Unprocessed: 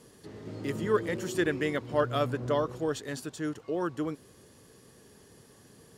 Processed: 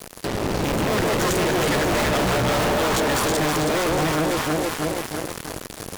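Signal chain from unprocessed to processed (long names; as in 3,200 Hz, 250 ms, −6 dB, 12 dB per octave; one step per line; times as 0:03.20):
sub-harmonics by changed cycles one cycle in 2, muted
delay that swaps between a low-pass and a high-pass 161 ms, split 920 Hz, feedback 76%, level −5 dB
fuzz pedal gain 52 dB, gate −52 dBFS
level −6 dB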